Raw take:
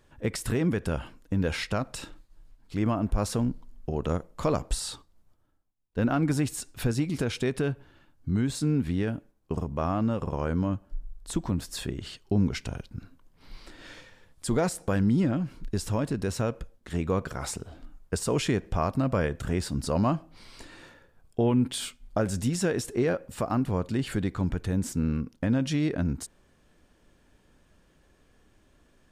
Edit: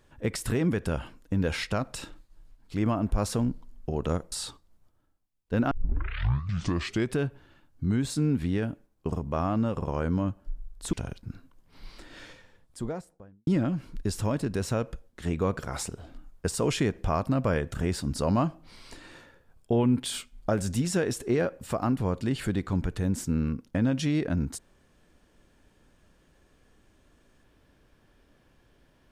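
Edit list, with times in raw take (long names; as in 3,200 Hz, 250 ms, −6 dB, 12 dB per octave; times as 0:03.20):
0:04.32–0:04.77: remove
0:06.16: tape start 1.45 s
0:11.38–0:12.61: remove
0:13.82–0:15.15: fade out and dull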